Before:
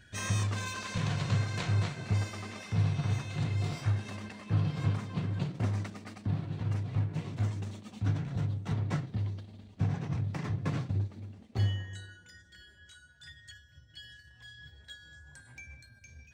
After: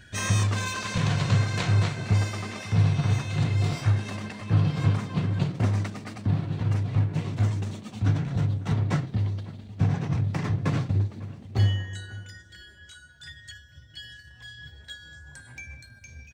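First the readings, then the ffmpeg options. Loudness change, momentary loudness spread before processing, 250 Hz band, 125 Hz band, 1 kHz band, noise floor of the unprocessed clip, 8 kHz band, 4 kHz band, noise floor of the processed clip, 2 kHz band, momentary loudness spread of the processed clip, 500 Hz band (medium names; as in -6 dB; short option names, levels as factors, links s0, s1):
+7.0 dB, 19 LU, +7.0 dB, +7.0 dB, +7.0 dB, -59 dBFS, no reading, +7.0 dB, -51 dBFS, +7.0 dB, 20 LU, +7.0 dB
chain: -filter_complex "[0:a]asplit=2[s0][s1];[s1]adelay=548.1,volume=0.112,highshelf=f=4000:g=-12.3[s2];[s0][s2]amix=inputs=2:normalize=0,volume=2.24"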